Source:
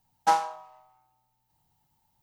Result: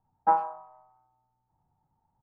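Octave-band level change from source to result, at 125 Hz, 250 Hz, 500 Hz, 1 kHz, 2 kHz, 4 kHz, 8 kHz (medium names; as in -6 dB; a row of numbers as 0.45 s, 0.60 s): no reading, 0.0 dB, 0.0 dB, 0.0 dB, -8.0 dB, under -30 dB, under -35 dB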